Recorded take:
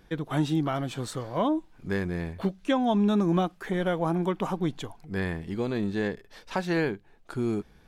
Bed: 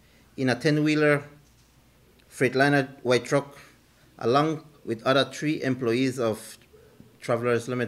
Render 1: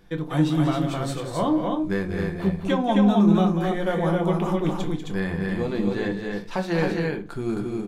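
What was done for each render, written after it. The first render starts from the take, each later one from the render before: loudspeakers at several distances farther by 66 m -9 dB, 91 m -3 dB; simulated room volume 130 m³, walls furnished, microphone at 0.85 m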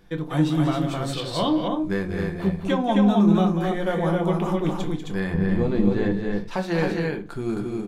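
1.13–1.68 s: high-order bell 3.7 kHz +11 dB 1.2 oct; 5.34–6.48 s: tilt EQ -2 dB/octave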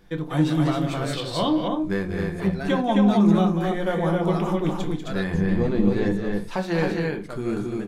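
add bed -14 dB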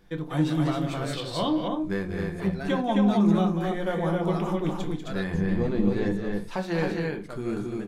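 trim -3.5 dB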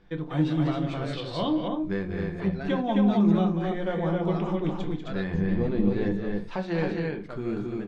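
low-pass 3.9 kHz 12 dB/octave; dynamic bell 1.2 kHz, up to -3 dB, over -38 dBFS, Q 0.86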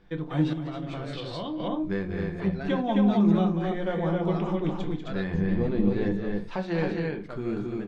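0.53–1.60 s: compression 5:1, threshold -30 dBFS

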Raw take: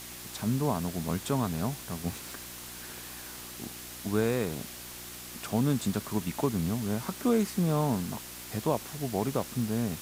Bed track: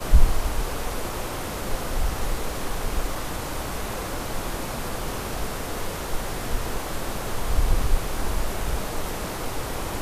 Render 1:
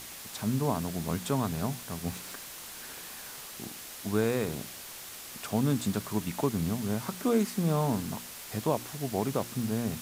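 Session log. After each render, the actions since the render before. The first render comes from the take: de-hum 60 Hz, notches 6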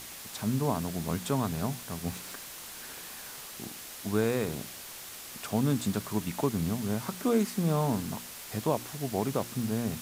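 no audible change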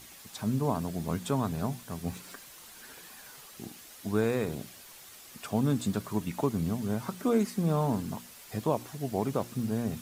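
noise reduction 8 dB, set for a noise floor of -44 dBFS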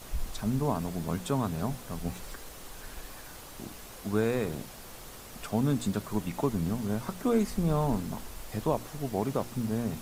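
add bed track -18.5 dB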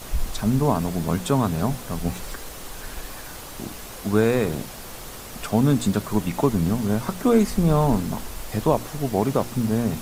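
trim +8.5 dB

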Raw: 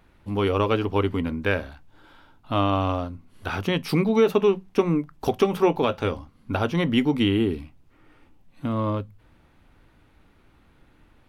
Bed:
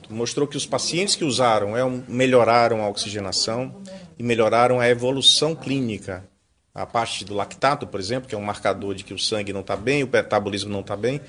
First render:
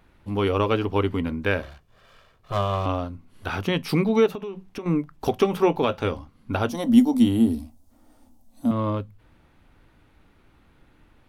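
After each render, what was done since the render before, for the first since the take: 1.62–2.86 s: comb filter that takes the minimum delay 1.7 ms; 4.26–4.86 s: compression 10:1, threshold -29 dBFS; 6.69–8.71 s: FFT filter 100 Hz 0 dB, 150 Hz -24 dB, 230 Hz +10 dB, 380 Hz -10 dB, 660 Hz +6 dB, 1.2 kHz -7 dB, 2.5 kHz -14 dB, 3.6 kHz -2 dB, 6.3 kHz +9 dB, 9.9 kHz +12 dB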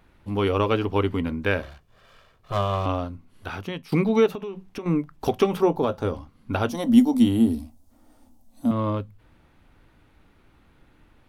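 3.10–3.92 s: fade out, to -14.5 dB; 5.61–6.14 s: peaking EQ 2.5 kHz -12.5 dB 1.2 oct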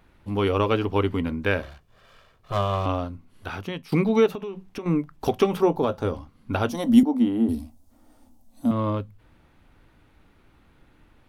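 7.03–7.49 s: three-band isolator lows -17 dB, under 200 Hz, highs -18 dB, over 2.3 kHz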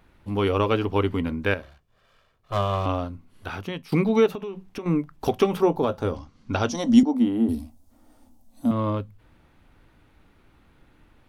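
1.54–2.52 s: gain -7.5 dB; 6.16–7.13 s: resonant low-pass 6.1 kHz, resonance Q 2.8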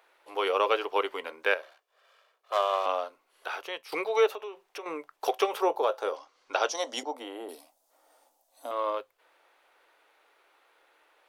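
inverse Chebyshev high-pass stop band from 230 Hz, stop band 40 dB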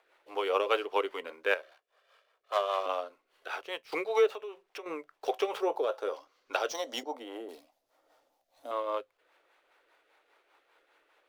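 median filter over 5 samples; rotary cabinet horn 5 Hz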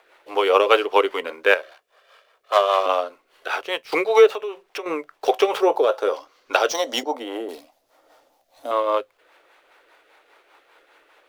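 trim +12 dB; peak limiter -1 dBFS, peak gain reduction 1 dB

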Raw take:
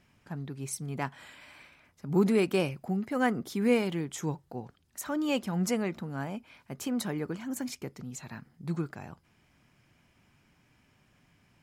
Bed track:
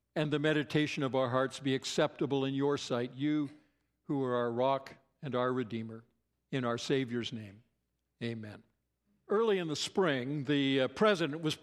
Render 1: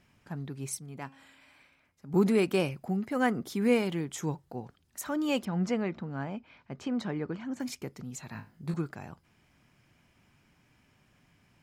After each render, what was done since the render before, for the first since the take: 0.79–2.14 s: feedback comb 270 Hz, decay 0.92 s; 5.45–7.60 s: distance through air 150 m; 8.33–8.74 s: flutter echo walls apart 3.3 m, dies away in 0.26 s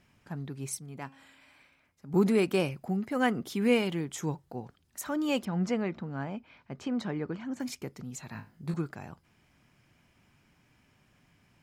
3.23–3.90 s: peaking EQ 2.9 kHz +6 dB 0.48 oct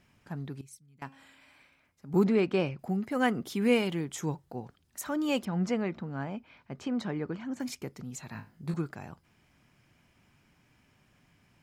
0.61–1.02 s: amplifier tone stack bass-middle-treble 6-0-2; 2.24–2.79 s: distance through air 140 m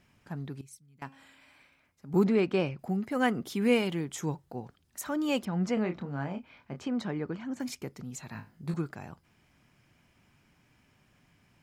5.74–6.80 s: doubling 28 ms -7 dB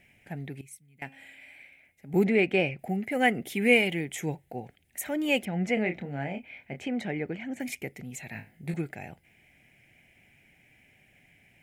FFT filter 270 Hz 0 dB, 770 Hz +5 dB, 1.1 kHz -16 dB, 2.1 kHz +14 dB, 4.8 kHz -6 dB, 9.6 kHz +6 dB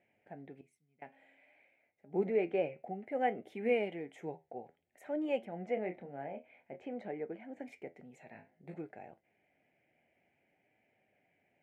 band-pass filter 580 Hz, Q 1.2; flange 0.55 Hz, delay 8.6 ms, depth 4.5 ms, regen +70%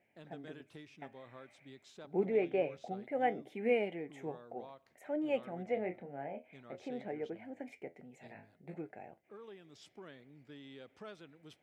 add bed track -22.5 dB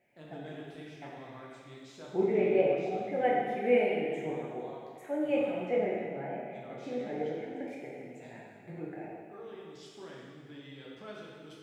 plate-style reverb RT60 1.9 s, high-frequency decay 0.9×, DRR -4.5 dB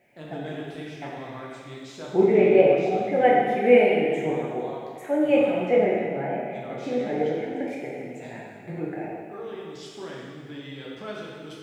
trim +9.5 dB

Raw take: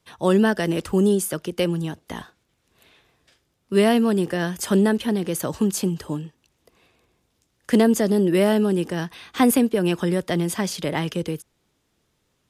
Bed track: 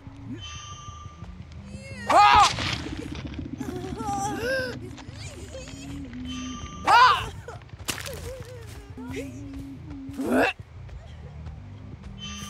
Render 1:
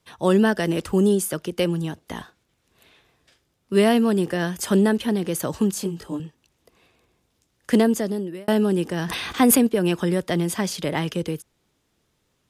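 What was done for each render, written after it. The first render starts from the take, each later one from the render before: 5.74–6.20 s: detune thickener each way 14 cents; 7.73–8.48 s: fade out linear; 8.98–9.67 s: decay stretcher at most 23 dB/s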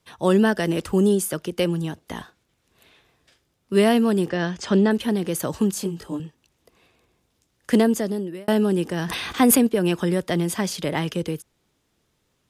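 4.29–4.91 s: low-pass 6 kHz 24 dB/octave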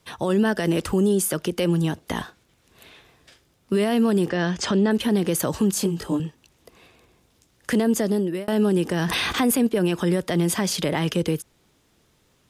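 in parallel at +2 dB: compression, threshold -28 dBFS, peak gain reduction 14.5 dB; on the sum: peak limiter -13 dBFS, peak gain reduction 10 dB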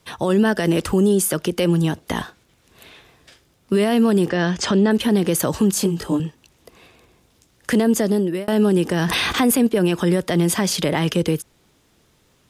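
trim +3.5 dB

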